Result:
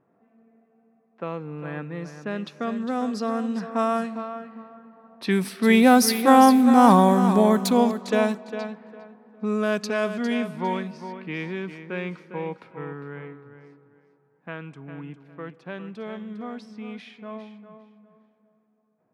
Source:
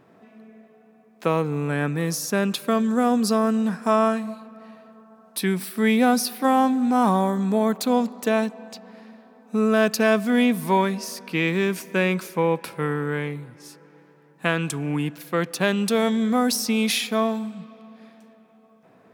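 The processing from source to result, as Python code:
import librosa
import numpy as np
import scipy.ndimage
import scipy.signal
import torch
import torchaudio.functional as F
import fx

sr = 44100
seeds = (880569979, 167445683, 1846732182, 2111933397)

y = fx.doppler_pass(x, sr, speed_mps=10, closest_m=10.0, pass_at_s=6.57)
y = fx.echo_feedback(y, sr, ms=404, feedback_pct=25, wet_db=-10.0)
y = fx.env_lowpass(y, sr, base_hz=1500.0, full_db=-23.0)
y = F.gain(torch.from_numpy(y), 5.0).numpy()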